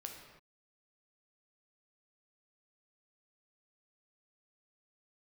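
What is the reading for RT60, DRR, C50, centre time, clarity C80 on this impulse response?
no single decay rate, 1.5 dB, 4.0 dB, 42 ms, 6.0 dB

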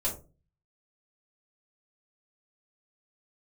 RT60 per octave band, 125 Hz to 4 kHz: 0.60 s, 0.50 s, 0.35 s, 0.25 s, 0.20 s, 0.15 s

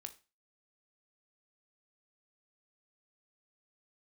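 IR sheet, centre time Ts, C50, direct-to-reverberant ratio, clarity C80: 6 ms, 16.0 dB, 7.5 dB, 22.0 dB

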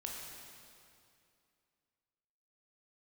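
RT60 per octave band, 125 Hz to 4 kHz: 2.6 s, 2.7 s, 2.6 s, 2.5 s, 2.3 s, 2.2 s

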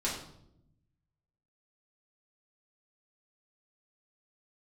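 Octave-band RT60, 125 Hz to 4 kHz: 1.6 s, 1.3 s, 0.90 s, 0.65 s, 0.55 s, 0.55 s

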